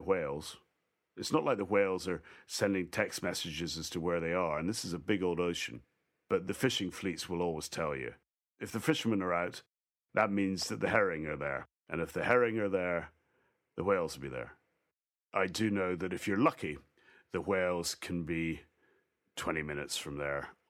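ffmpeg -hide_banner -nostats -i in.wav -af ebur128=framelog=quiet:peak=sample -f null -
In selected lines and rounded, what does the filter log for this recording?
Integrated loudness:
  I:         -34.2 LUFS
  Threshold: -44.6 LUFS
Loudness range:
  LRA:         3.4 LU
  Threshold: -54.8 LUFS
  LRA low:   -36.6 LUFS
  LRA high:  -33.2 LUFS
Sample peak:
  Peak:      -13.4 dBFS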